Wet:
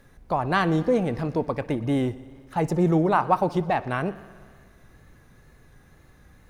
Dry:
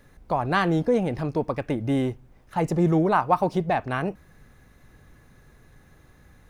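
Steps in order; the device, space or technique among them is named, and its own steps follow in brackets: multi-head tape echo (multi-head delay 61 ms, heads first and second, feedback 71%, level -23.5 dB; wow and flutter)

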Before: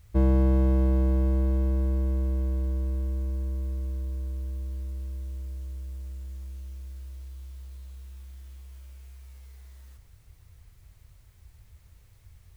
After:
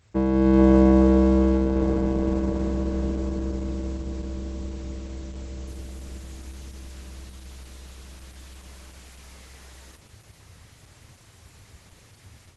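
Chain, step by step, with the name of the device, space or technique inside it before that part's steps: video call (high-pass 150 Hz 12 dB/octave; level rider gain up to 10.5 dB; trim +4 dB; Opus 12 kbps 48 kHz)

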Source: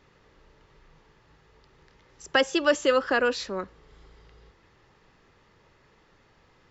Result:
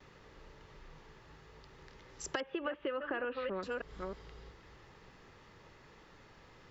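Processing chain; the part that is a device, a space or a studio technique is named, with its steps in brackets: chunks repeated in reverse 318 ms, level -11 dB; 2.40–3.63 s: steep low-pass 2.9 kHz 36 dB/octave; gate with hold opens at -54 dBFS; serial compression, leveller first (compression 3:1, threshold -28 dBFS, peak gain reduction 9.5 dB; compression 5:1, threshold -37 dBFS, peak gain reduction 12 dB); trim +2 dB

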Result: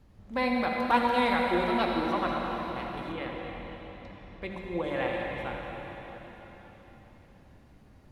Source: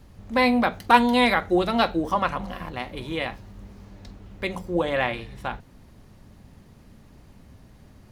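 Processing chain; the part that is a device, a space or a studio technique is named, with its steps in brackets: swimming-pool hall (reverberation RT60 4.2 s, pre-delay 55 ms, DRR -0.5 dB; treble shelf 4.4 kHz -6.5 dB); 3.12–4.84 s: treble shelf 4.7 kHz -8.5 dB; trim -8.5 dB

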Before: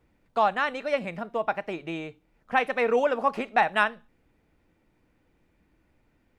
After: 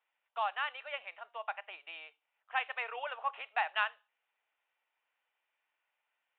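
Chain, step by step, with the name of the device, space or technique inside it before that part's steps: musical greeting card (resampled via 8 kHz; high-pass 770 Hz 24 dB/octave; peaking EQ 2.9 kHz +7 dB 0.34 oct); trim -9 dB

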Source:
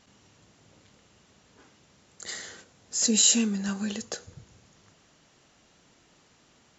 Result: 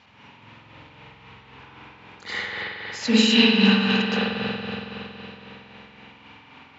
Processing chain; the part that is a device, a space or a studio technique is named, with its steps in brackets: combo amplifier with spring reverb and tremolo (spring tank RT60 3.7 s, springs 46 ms, chirp 70 ms, DRR -8.5 dB; tremolo 3.8 Hz, depth 42%; cabinet simulation 76–4300 Hz, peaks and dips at 120 Hz +3 dB, 170 Hz -8 dB, 360 Hz -8 dB, 630 Hz -6 dB, 910 Hz +8 dB, 2.4 kHz +8 dB); trim +6 dB

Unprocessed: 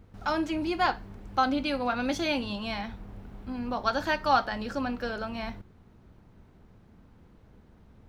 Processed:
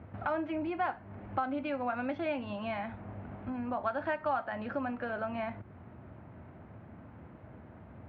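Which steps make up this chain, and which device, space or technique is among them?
bass amplifier (compression 3:1, threshold -44 dBFS, peak gain reduction 19 dB; cabinet simulation 80–2400 Hz, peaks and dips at 190 Hz -5 dB, 440 Hz -6 dB, 630 Hz +6 dB); trim +8 dB

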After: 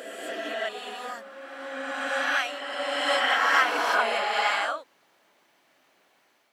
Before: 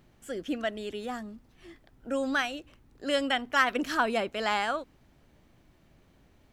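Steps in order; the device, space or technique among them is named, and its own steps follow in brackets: ghost voice (reverse; reverberation RT60 3.0 s, pre-delay 9 ms, DRR -5.5 dB; reverse; high-pass 710 Hz 12 dB/octave)

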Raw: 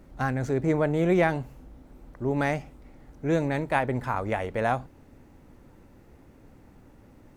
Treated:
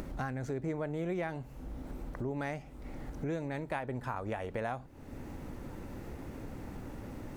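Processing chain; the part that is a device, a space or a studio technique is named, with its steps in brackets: upward and downward compression (upward compressor, threshold -29 dBFS; compression 4:1, threshold -32 dBFS, peak gain reduction 12.5 dB); 3.83–4.55 s: band-stop 2.1 kHz, Q 11; trim -2 dB

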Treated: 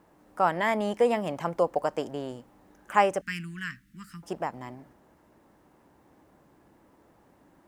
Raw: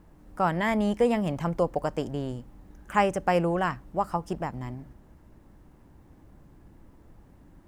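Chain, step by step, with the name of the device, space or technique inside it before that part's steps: 3.21–4.23 s: elliptic band-stop 230–1700 Hz, stop band 60 dB; filter by subtraction (in parallel: low-pass 620 Hz 12 dB/octave + polarity flip)

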